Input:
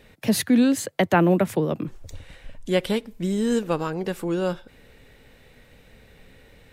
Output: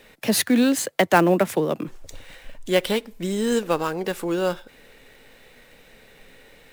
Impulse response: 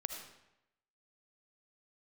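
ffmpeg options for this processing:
-filter_complex "[0:a]equalizer=frequency=70:width=0.47:gain=-14.5,acrossover=split=1100[link_01][link_02];[link_02]acrusher=bits=2:mode=log:mix=0:aa=0.000001[link_03];[link_01][link_03]amix=inputs=2:normalize=0,volume=4dB"

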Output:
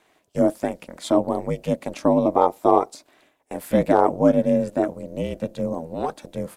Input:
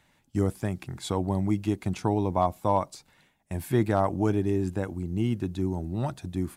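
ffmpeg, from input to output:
ffmpeg -i in.wav -af "highpass=frequency=450:width_type=q:width=4.9,aeval=exprs='val(0)*sin(2*PI*160*n/s)':channel_layout=same,volume=5.5dB" out.wav

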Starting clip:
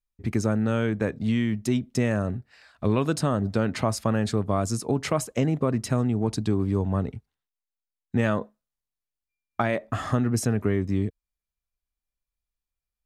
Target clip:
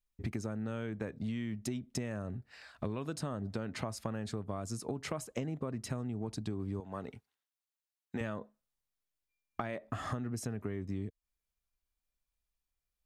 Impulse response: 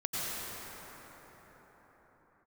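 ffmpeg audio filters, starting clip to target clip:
-filter_complex "[0:a]asettb=1/sr,asplit=3[link_01][link_02][link_03];[link_01]atrim=end=6.804[link_04];[link_02]atrim=start=6.8:end=8.21,asetpts=PTS-STARTPTS,afade=type=in:duration=0.004:curve=qsin,afade=type=out:start_time=1.406:duration=0.004:curve=qsin,highpass=frequency=600:poles=1[link_05];[link_03]atrim=start=8.206[link_06];[link_04][link_05]acrossfade=duration=0.004:curve1=hsin:curve2=qsin[link_07];[link_07][link_06]acrossfade=duration=0.004:curve1=qsin:curve2=hsin,acompressor=threshold=-35dB:ratio=6"

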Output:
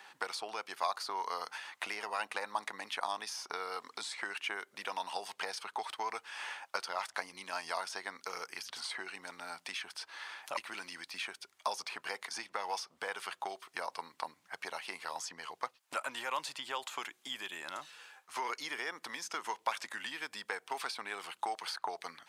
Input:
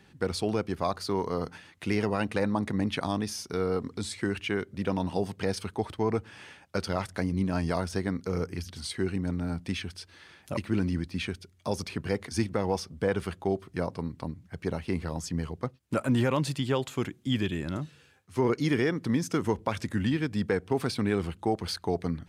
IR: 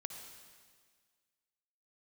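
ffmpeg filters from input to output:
-filter_complex "[0:a]acrossover=split=2000|6800[link_01][link_02][link_03];[link_01]acompressor=threshold=-40dB:ratio=4[link_04];[link_02]acompressor=threshold=-49dB:ratio=4[link_05];[link_03]acompressor=threshold=-60dB:ratio=4[link_06];[link_04][link_05][link_06]amix=inputs=3:normalize=0,highpass=frequency=900:width_type=q:width=2,volume=5.5dB"

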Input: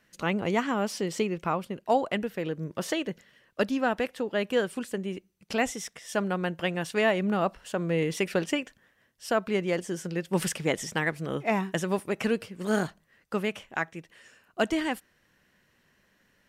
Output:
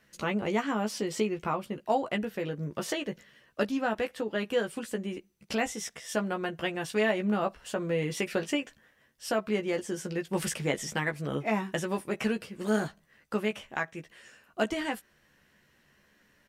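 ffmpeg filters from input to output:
ffmpeg -i in.wav -filter_complex "[0:a]asplit=2[link_01][link_02];[link_02]acompressor=threshold=-33dB:ratio=6,volume=1.5dB[link_03];[link_01][link_03]amix=inputs=2:normalize=0,asplit=2[link_04][link_05];[link_05]adelay=14,volume=-5dB[link_06];[link_04][link_06]amix=inputs=2:normalize=0,volume=-6.5dB" out.wav

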